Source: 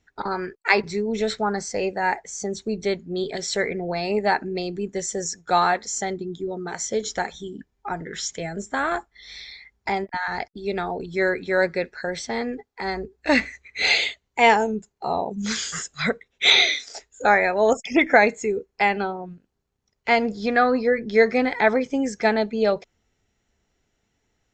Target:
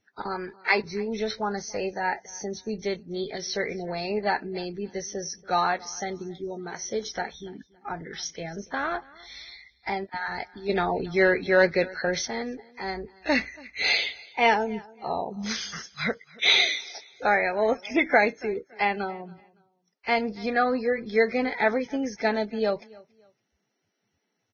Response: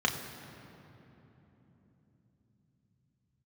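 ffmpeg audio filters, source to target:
-filter_complex "[0:a]aecho=1:1:282|564:0.0708|0.0191,asettb=1/sr,asplit=3[link_01][link_02][link_03];[link_01]atrim=end=10.694[link_04];[link_02]atrim=start=10.69:end=12.28,asetpts=PTS-STARTPTS,afade=type=in:duration=0.004:curve=qsin,afade=type=out:start_time=1.586:duration=0.004:curve=qsin,acontrast=76[link_05];[link_03]atrim=start=12.276[link_06];[link_04][link_05]acrossfade=duration=0.004:curve1=hsin:curve2=qsin[link_07];[link_07][link_06]acrossfade=duration=0.004:curve1=qsin:curve2=hsin,volume=-5dB" -ar 16000 -c:a libvorbis -b:a 16k

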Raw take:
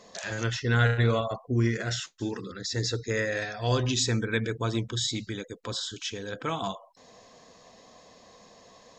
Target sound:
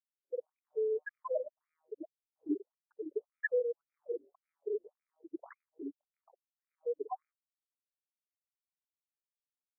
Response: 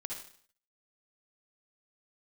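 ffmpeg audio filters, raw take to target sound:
-filter_complex "[0:a]afftfilt=real='re':imag='-im':win_size=4096:overlap=0.75,acrossover=split=710[link_01][link_02];[link_01]acrusher=samples=12:mix=1:aa=0.000001[link_03];[link_03][link_02]amix=inputs=2:normalize=0,afwtdn=0.00708,asplit=2[link_04][link_05];[link_05]acompressor=threshold=-43dB:ratio=12,volume=3dB[link_06];[link_04][link_06]amix=inputs=2:normalize=0,alimiter=level_in=0.5dB:limit=-24dB:level=0:latency=1:release=136,volume=-0.5dB,lowpass=frequency=5700:width_type=q:width=1.7,afftfilt=real='re*gte(hypot(re,im),0.112)':imag='im*gte(hypot(re,im),0.112)':win_size=1024:overlap=0.75,aexciter=amount=7.9:drive=6:freq=2500,asoftclip=type=hard:threshold=-18.5dB,asetrate=40517,aresample=44100,afftfilt=real='re*between(b*sr/1024,390*pow(1800/390,0.5+0.5*sin(2*PI*1.8*pts/sr))/1.41,390*pow(1800/390,0.5+0.5*sin(2*PI*1.8*pts/sr))*1.41)':imag='im*between(b*sr/1024,390*pow(1800/390,0.5+0.5*sin(2*PI*1.8*pts/sr))/1.41,390*pow(1800/390,0.5+0.5*sin(2*PI*1.8*pts/sr))*1.41)':win_size=1024:overlap=0.75,volume=9.5dB"

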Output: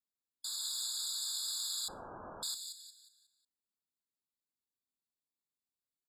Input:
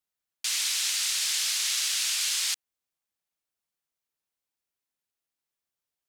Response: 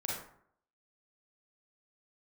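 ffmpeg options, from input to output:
-filter_complex "[0:a]equalizer=frequency=250:width_type=o:width=0.67:gain=8,equalizer=frequency=630:width_type=o:width=0.67:gain=-7,equalizer=frequency=1600:width_type=o:width=0.67:gain=-10,acrossover=split=720|2300[link_01][link_02][link_03];[link_03]asplit=6[link_04][link_05][link_06][link_07][link_08][link_09];[link_05]adelay=181,afreqshift=-110,volume=-6dB[link_10];[link_06]adelay=362,afreqshift=-220,volume=-14.4dB[link_11];[link_07]adelay=543,afreqshift=-330,volume=-22.8dB[link_12];[link_08]adelay=724,afreqshift=-440,volume=-31.2dB[link_13];[link_09]adelay=905,afreqshift=-550,volume=-39.6dB[link_14];[link_04][link_10][link_11][link_12][link_13][link_14]amix=inputs=6:normalize=0[link_15];[link_01][link_02][link_15]amix=inputs=3:normalize=0,asettb=1/sr,asplit=3[link_16][link_17][link_18];[link_16]atrim=end=1.884[link_19];[link_17]atrim=start=1.88:end=2.43,asetpts=PTS-STARTPTS,afade=type=in:duration=0.004:curve=qsin,afade=type=out:start_time=0.546:duration=0.004:curve=qsin,lowpass=frequency=2900:width_type=q:width=0.5098,lowpass=frequency=2900:width_type=q:width=0.6013,lowpass=frequency=2900:width_type=q:width=0.9,lowpass=frequency=2900:width_type=q:width=2.563,afreqshift=-3400[link_20];[link_18]atrim=start=2.426[link_21];[link_19][link_20]acrossfade=duration=0.004:curve1=hsin:curve2=qsin[link_22];[link_22][link_21]acrossfade=duration=0.004:curve1=qsin:curve2=hsin,asplit=2[link_23][link_24];[1:a]atrim=start_sample=2205[link_25];[link_24][link_25]afir=irnorm=-1:irlink=0,volume=-24dB[link_26];[link_23][link_26]amix=inputs=2:normalize=0,afftfilt=real='re*eq(mod(floor(b*sr/1024/1700),2),0)':imag='im*eq(mod(floor(b*sr/1024/1700),2),0)':win_size=1024:overlap=0.75,volume=-8.5dB"

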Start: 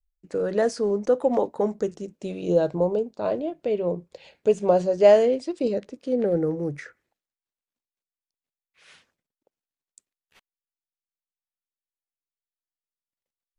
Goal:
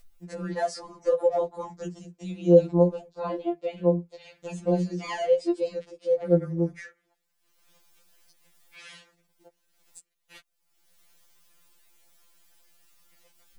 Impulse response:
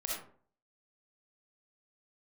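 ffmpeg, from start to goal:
-af "acompressor=mode=upward:threshold=-35dB:ratio=2.5,afftfilt=real='re*2.83*eq(mod(b,8),0)':imag='im*2.83*eq(mod(b,8),0)':win_size=2048:overlap=0.75"

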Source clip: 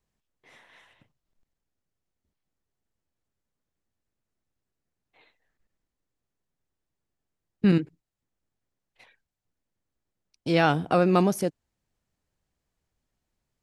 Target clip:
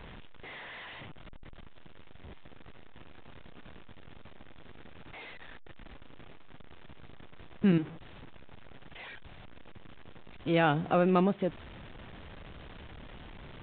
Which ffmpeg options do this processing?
ffmpeg -i in.wav -af "aeval=exprs='val(0)+0.5*0.0188*sgn(val(0))':channel_layout=same,aresample=8000,aresample=44100,volume=-5dB" out.wav

